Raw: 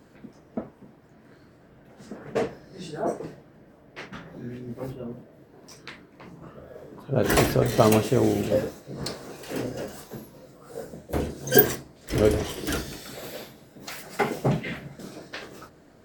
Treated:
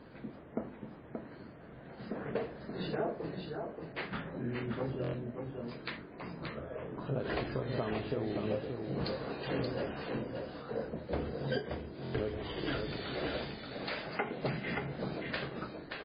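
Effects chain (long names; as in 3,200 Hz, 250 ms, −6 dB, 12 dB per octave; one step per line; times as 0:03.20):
mains-hum notches 50/100/150/200/250/300/350 Hz
downward compressor 16 to 1, threshold −33 dBFS, peak gain reduction 23.5 dB
high-frequency loss of the air 69 metres
single-tap delay 578 ms −5 dB
buffer that repeats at 0:05.02/0:12.03, samples 1,024, times 4
level +2 dB
MP3 16 kbit/s 11,025 Hz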